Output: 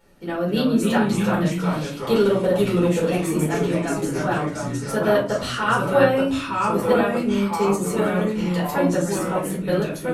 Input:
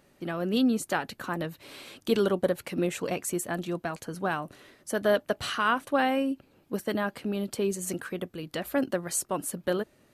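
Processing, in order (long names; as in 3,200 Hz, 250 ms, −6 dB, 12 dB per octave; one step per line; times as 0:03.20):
de-essing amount 55%
delay with pitch and tempo change per echo 232 ms, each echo −2 semitones, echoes 3
convolution reverb RT60 0.40 s, pre-delay 4 ms, DRR −6 dB
level −4 dB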